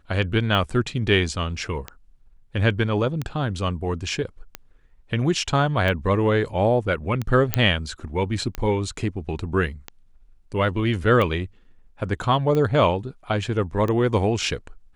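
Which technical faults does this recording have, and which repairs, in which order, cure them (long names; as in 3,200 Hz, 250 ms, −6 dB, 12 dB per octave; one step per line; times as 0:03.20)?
scratch tick 45 rpm −14 dBFS
0:07.54: click −2 dBFS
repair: click removal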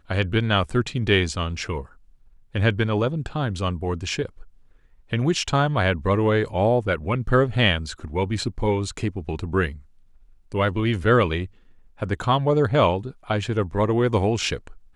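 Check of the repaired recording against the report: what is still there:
none of them is left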